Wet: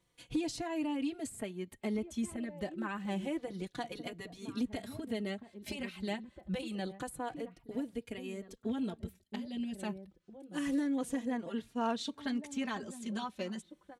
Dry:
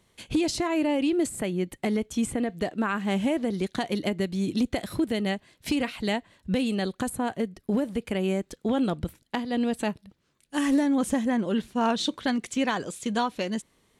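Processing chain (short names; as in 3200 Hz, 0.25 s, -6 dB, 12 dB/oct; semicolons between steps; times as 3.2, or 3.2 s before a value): 7.56–9.76 bell 1100 Hz -7 dB 1.1 oct; outdoor echo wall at 280 m, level -12 dB; endless flanger 3.6 ms -0.28 Hz; gain -8 dB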